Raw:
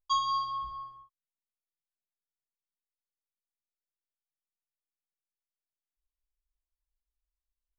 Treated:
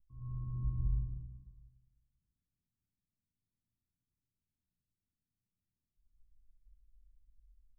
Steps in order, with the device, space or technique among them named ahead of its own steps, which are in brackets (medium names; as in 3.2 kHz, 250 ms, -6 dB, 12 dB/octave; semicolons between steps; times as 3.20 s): club heard from the street (peak limiter -29.5 dBFS, peak gain reduction 10.5 dB; low-pass 210 Hz 24 dB/octave; reverberation RT60 1.2 s, pre-delay 101 ms, DRR -7.5 dB); trim +15 dB